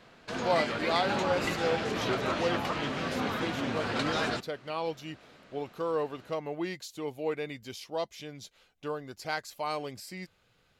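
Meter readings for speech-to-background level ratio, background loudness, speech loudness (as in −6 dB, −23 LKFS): −3.5 dB, −32.0 LKFS, −35.5 LKFS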